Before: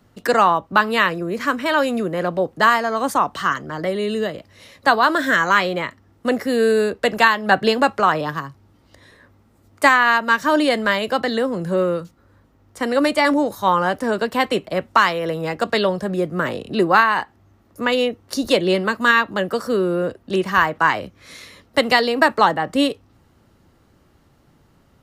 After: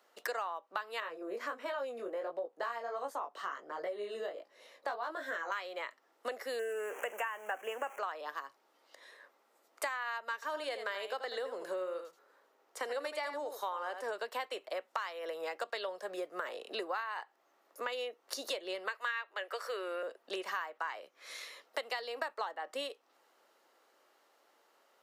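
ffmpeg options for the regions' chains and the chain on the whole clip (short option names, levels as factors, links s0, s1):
-filter_complex "[0:a]asettb=1/sr,asplit=3[s0][s1][s2];[s0]atrim=end=1.004[s3];[s1]atrim=start=1:end=5.52,asetpts=PTS-STARTPTS,afade=t=in:d=0.004:c=qsin,afade=t=out:st=4.516:d=0.004:c=qsin,volume=1.78,asoftclip=hard,volume=0.562,tiltshelf=f=880:g=6.5,flanger=delay=17.5:depth=4.2:speed=1.4[s4];[s2]atrim=start=5.516[s5];[s3][s4]acrossfade=d=0.004:c1=hsin:c2=qsin[s6];[s6][s5]acrossfade=d=0.004:c1=qsin:c2=hsin,asettb=1/sr,asplit=3[s7][s8][s9];[s7]atrim=end=6.594[s10];[s8]atrim=start=6.59:end=7.99,asetpts=PTS-STARTPTS,afade=t=in:d=0.004:c=qsin,afade=t=out:st=1.396:d=0.004:c=qsin,aeval=exprs='val(0)+0.5*0.0531*sgn(val(0))':c=same,asuperstop=centerf=4300:order=8:qfactor=1.3[s11];[s9]atrim=start=7.986[s12];[s10][s11]acrossfade=d=0.004:c1=hsin:c2=qsin[s13];[s13][s12]acrossfade=d=0.004:c1=qsin:c2=hsin,asettb=1/sr,asplit=3[s14][s15][s16];[s14]atrim=end=10.344[s17];[s15]atrim=start=10.34:end=14.11,asetpts=PTS-STARTPTS,afade=t=in:d=0.004:c=qsin,afade=t=out:st=3.766:d=0.004:c=qsin,equalizer=f=420:w=5.5:g=5.5,aecho=1:1:81:0.316,atrim=end_sample=166257[s18];[s16]atrim=start=14.106[s19];[s17][s18]acrossfade=d=0.004:c1=hsin:c2=qsin[s20];[s20][s19]acrossfade=d=0.004:c1=qsin:c2=hsin,asettb=1/sr,asplit=3[s21][s22][s23];[s21]atrim=end=18.884[s24];[s22]atrim=start=18.88:end=20.03,asetpts=PTS-STARTPTS,afade=t=in:d=0.004:c=qsin,afade=t=out:st=1.146:d=0.004:c=qsin,highpass=f=360:w=0.5412,highpass=f=360:w=1.3066,equalizer=f=2200:w=1.1:g=10[s25];[s23]atrim=start=20.026[s26];[s24][s25]acrossfade=d=0.004:c1=hsin:c2=qsin[s27];[s27][s26]acrossfade=d=0.004:c1=qsin:c2=hsin,highpass=f=470:w=0.5412,highpass=f=470:w=1.3066,equalizer=f=9300:t=o:w=0.2:g=-2,acompressor=threshold=0.0316:ratio=6,volume=0.501"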